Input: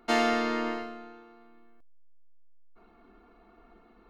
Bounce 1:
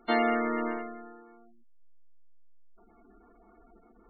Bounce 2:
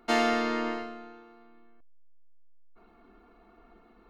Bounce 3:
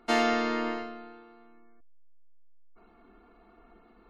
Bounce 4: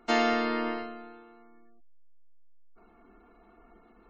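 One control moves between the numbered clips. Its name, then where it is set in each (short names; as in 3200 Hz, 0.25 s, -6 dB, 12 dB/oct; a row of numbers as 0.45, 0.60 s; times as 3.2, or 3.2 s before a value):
spectral gate, under each frame's peak: -15, -60, -40, -30 dB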